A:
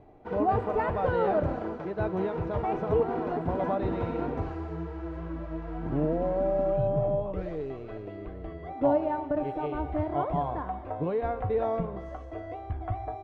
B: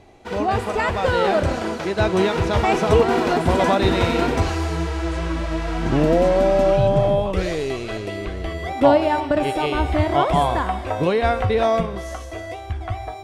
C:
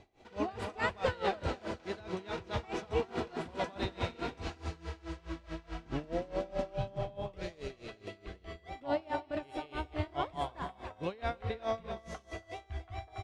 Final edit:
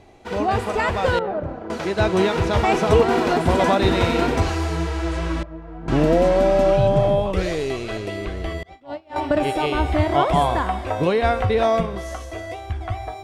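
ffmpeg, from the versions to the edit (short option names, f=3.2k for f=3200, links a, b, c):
-filter_complex "[0:a]asplit=2[a][b];[1:a]asplit=4[c][d][e][f];[c]atrim=end=1.192[g];[a]atrim=start=1.188:end=1.702[h];[d]atrim=start=1.698:end=5.432[i];[b]atrim=start=5.428:end=5.882[j];[e]atrim=start=5.878:end=8.632[k];[2:a]atrim=start=8.628:end=9.162[l];[f]atrim=start=9.158[m];[g][h]acrossfade=d=0.004:c1=hsin:c2=hsin[n];[n][i]acrossfade=d=0.004:c1=hsin:c2=hsin[o];[o][j]acrossfade=d=0.004:c1=hsin:c2=hsin[p];[p][k]acrossfade=d=0.004:c1=hsin:c2=hsin[q];[q][l]acrossfade=d=0.004:c1=hsin:c2=hsin[r];[r][m]acrossfade=d=0.004:c1=hsin:c2=hsin"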